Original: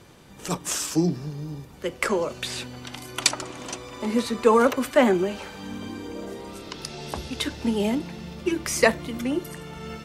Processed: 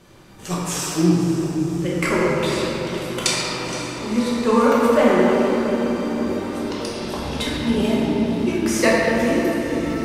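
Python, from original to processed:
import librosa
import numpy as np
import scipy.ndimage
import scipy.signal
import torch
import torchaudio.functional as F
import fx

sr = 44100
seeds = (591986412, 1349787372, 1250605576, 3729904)

y = fx.rider(x, sr, range_db=3, speed_s=2.0)
y = fx.echo_diffused(y, sr, ms=530, feedback_pct=69, wet_db=-13.0)
y = fx.room_shoebox(y, sr, seeds[0], volume_m3=210.0, walls='hard', distance_m=1.1)
y = y * 10.0 ** (-4.0 / 20.0)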